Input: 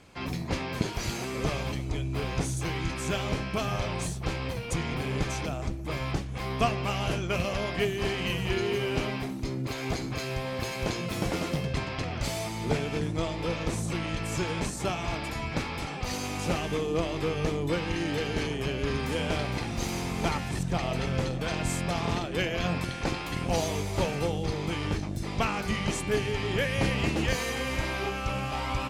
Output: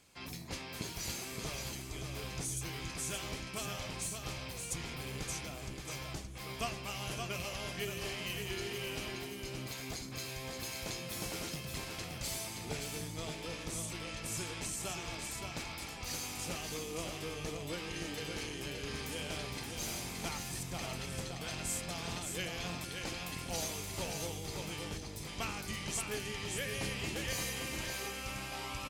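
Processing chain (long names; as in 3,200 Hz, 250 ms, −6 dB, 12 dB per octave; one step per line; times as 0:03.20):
first-order pre-emphasis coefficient 0.8
single-tap delay 573 ms −5 dB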